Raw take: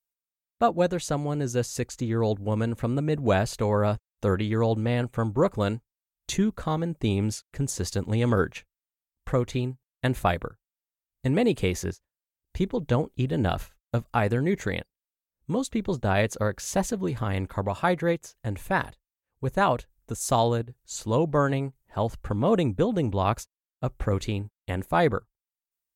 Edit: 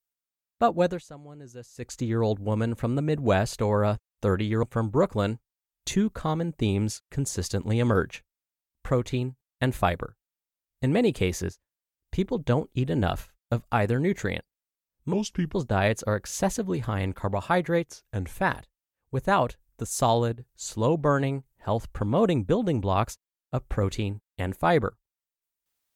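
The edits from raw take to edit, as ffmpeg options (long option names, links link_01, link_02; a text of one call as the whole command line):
ffmpeg -i in.wav -filter_complex "[0:a]asplit=8[link_01][link_02][link_03][link_04][link_05][link_06][link_07][link_08];[link_01]atrim=end=1.03,asetpts=PTS-STARTPTS,afade=type=out:start_time=0.89:duration=0.14:silence=0.141254[link_09];[link_02]atrim=start=1.03:end=1.77,asetpts=PTS-STARTPTS,volume=-17dB[link_10];[link_03]atrim=start=1.77:end=4.632,asetpts=PTS-STARTPTS,afade=type=in:duration=0.14:silence=0.141254[link_11];[link_04]atrim=start=5.048:end=15.554[link_12];[link_05]atrim=start=15.55:end=15.87,asetpts=PTS-STARTPTS,asetrate=34839,aresample=44100,atrim=end_sample=17863,asetpts=PTS-STARTPTS[link_13];[link_06]atrim=start=15.866:end=18.174[link_14];[link_07]atrim=start=18.17:end=18.63,asetpts=PTS-STARTPTS,asetrate=40572,aresample=44100[link_15];[link_08]atrim=start=18.626[link_16];[link_09][link_10][link_11]concat=n=3:v=0:a=1[link_17];[link_17][link_12]acrossfade=duration=0.004:curve1=hsin:curve2=hsin[link_18];[link_18][link_13]acrossfade=duration=0.004:curve1=hsin:curve2=hsin[link_19];[link_19][link_14]acrossfade=duration=0.004:curve1=hsin:curve2=hsin[link_20];[link_20][link_15]acrossfade=duration=0.004:curve1=hsin:curve2=hsin[link_21];[link_21][link_16]acrossfade=duration=0.004:curve1=hsin:curve2=hsin" out.wav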